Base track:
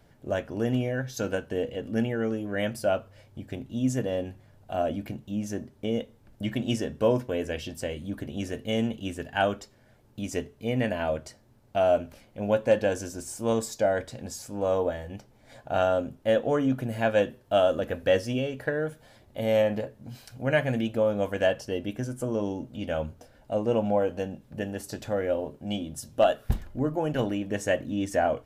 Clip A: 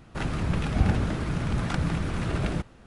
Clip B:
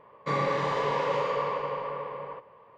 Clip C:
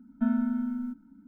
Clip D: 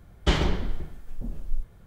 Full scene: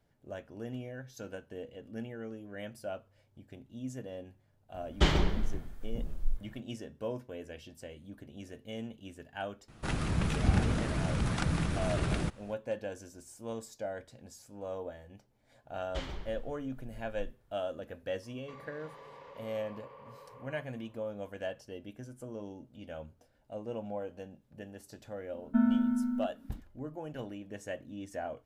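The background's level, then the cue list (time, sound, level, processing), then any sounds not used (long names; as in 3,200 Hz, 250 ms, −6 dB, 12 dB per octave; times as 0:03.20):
base track −14 dB
0:04.74: mix in D −3 dB
0:09.68: mix in A −4 dB + high-shelf EQ 4,800 Hz +7.5 dB
0:15.68: mix in D −15.5 dB + parametric band 220 Hz −7 dB 1.5 octaves
0:18.22: mix in B −13.5 dB + downward compressor 5 to 1, threshold −35 dBFS
0:25.33: mix in C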